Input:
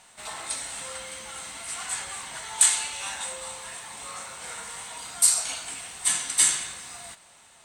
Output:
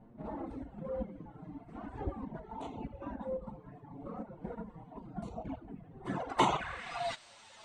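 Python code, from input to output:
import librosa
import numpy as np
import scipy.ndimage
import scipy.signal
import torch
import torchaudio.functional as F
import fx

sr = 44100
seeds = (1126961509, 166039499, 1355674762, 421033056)

p1 = fx.dereverb_blind(x, sr, rt60_s=2.0)
p2 = fx.transient(p1, sr, attack_db=-6, sustain_db=7, at=(0.88, 2.32))
p3 = fx.dynamic_eq(p2, sr, hz=770.0, q=1.1, threshold_db=-52.0, ratio=4.0, max_db=5)
p4 = fx.level_steps(p3, sr, step_db=20)
p5 = p3 + (p4 * 10.0 ** (1.5 / 20.0))
p6 = fx.env_flanger(p5, sr, rest_ms=9.5, full_db=-17.0)
p7 = fx.filter_sweep_lowpass(p6, sr, from_hz=270.0, to_hz=5000.0, start_s=5.9, end_s=7.19, q=1.5)
p8 = fx.band_squash(p7, sr, depth_pct=40, at=(2.82, 3.57))
y = p8 * 10.0 ** (10.5 / 20.0)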